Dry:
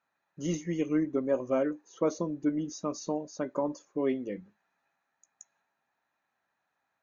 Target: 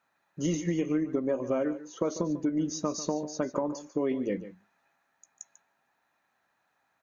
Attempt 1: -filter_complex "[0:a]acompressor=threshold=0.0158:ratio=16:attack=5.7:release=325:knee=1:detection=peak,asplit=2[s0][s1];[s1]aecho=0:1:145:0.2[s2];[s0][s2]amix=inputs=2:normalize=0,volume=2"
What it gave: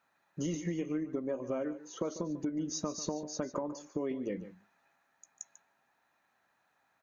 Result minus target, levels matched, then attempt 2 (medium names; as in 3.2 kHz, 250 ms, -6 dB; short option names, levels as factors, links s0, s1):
compression: peak gain reduction +6.5 dB
-filter_complex "[0:a]acompressor=threshold=0.0355:ratio=16:attack=5.7:release=325:knee=1:detection=peak,asplit=2[s0][s1];[s1]aecho=0:1:145:0.2[s2];[s0][s2]amix=inputs=2:normalize=0,volume=2"